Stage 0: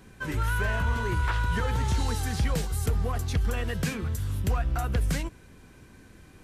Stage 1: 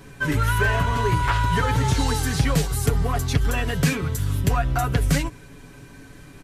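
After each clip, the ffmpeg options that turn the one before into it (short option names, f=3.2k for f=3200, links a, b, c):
-af "aecho=1:1:7.1:0.65,volume=6.5dB"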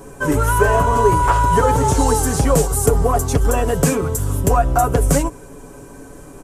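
-af "equalizer=f=125:t=o:w=1:g=-6,equalizer=f=500:t=o:w=1:g=7,equalizer=f=1k:t=o:w=1:g=4,equalizer=f=2k:t=o:w=1:g=-9,equalizer=f=4k:t=o:w=1:g=-11,equalizer=f=8k:t=o:w=1:g=7,volume=6dB"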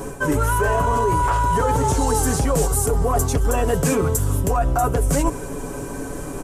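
-af "alimiter=limit=-8dB:level=0:latency=1:release=13,areverse,acompressor=threshold=-25dB:ratio=6,areverse,volume=8.5dB"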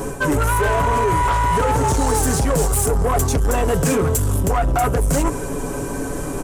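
-af "asoftclip=type=tanh:threshold=-18dB,volume=5dB"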